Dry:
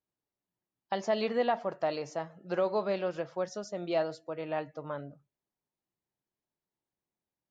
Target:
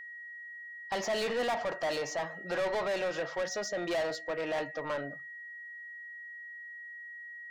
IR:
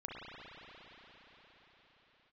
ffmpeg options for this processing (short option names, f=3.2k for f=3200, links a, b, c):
-filter_complex "[0:a]asplit=2[a][b];[b]highpass=f=720:p=1,volume=26dB,asoftclip=type=tanh:threshold=-18dB[c];[a][c]amix=inputs=2:normalize=0,lowpass=f=6.3k:p=1,volume=-6dB,aeval=exprs='val(0)+0.0158*sin(2*PI*1900*n/s)':c=same,volume=-7dB"